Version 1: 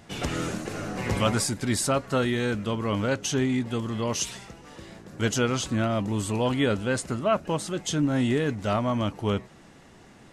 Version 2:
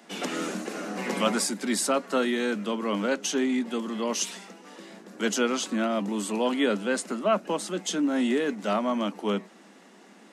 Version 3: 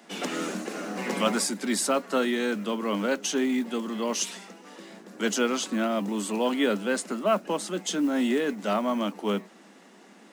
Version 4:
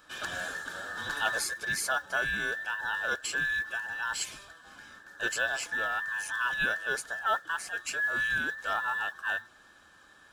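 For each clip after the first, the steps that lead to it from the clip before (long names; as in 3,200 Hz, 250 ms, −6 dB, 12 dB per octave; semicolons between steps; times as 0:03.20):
Butterworth high-pass 180 Hz 96 dB per octave
noise that follows the level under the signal 31 dB
frequency inversion band by band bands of 2,000 Hz; level −5 dB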